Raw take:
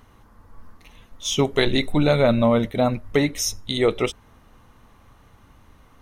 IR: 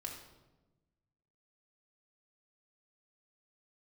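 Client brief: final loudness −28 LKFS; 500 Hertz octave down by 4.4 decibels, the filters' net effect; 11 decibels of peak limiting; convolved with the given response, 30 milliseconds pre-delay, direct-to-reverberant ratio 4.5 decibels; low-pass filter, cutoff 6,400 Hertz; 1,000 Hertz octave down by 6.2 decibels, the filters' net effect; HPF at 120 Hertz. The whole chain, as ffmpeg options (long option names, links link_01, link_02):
-filter_complex "[0:a]highpass=120,lowpass=6400,equalizer=frequency=500:width_type=o:gain=-3.5,equalizer=frequency=1000:width_type=o:gain=-7.5,alimiter=limit=-17.5dB:level=0:latency=1,asplit=2[link_01][link_02];[1:a]atrim=start_sample=2205,adelay=30[link_03];[link_02][link_03]afir=irnorm=-1:irlink=0,volume=-2.5dB[link_04];[link_01][link_04]amix=inputs=2:normalize=0,volume=-1.5dB"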